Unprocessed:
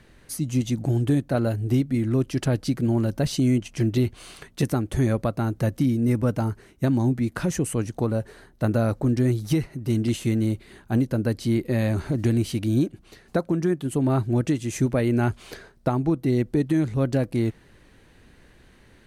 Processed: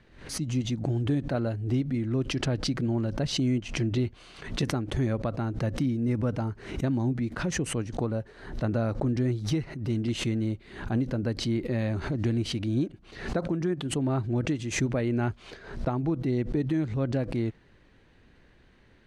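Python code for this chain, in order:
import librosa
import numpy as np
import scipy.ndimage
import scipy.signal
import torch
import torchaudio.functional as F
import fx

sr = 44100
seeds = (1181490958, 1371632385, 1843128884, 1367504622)

y = scipy.signal.sosfilt(scipy.signal.butter(2, 4900.0, 'lowpass', fs=sr, output='sos'), x)
y = fx.pre_swell(y, sr, db_per_s=94.0)
y = y * 10.0 ** (-5.5 / 20.0)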